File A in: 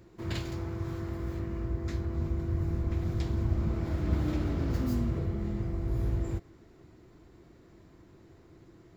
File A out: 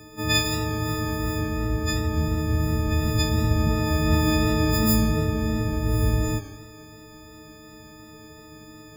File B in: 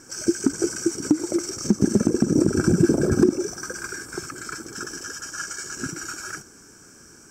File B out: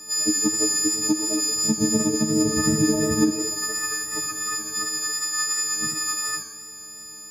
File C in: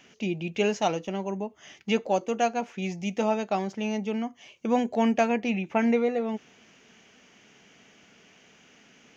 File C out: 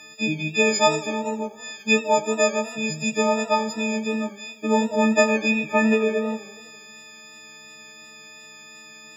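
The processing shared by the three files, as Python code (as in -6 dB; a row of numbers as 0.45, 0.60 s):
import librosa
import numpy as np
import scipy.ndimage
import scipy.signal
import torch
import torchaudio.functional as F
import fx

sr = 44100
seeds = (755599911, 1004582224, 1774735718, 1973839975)

y = fx.freq_snap(x, sr, grid_st=6)
y = fx.echo_warbled(y, sr, ms=84, feedback_pct=67, rate_hz=2.8, cents=126, wet_db=-18.5)
y = y * 10.0 ** (-24 / 20.0) / np.sqrt(np.mean(np.square(y)))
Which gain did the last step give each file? +9.0, -3.0, +3.5 dB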